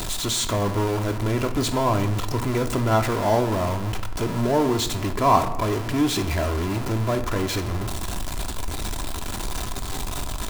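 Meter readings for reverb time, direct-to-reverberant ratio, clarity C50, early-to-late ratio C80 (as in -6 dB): 1.1 s, 5.0 dB, 11.5 dB, 14.0 dB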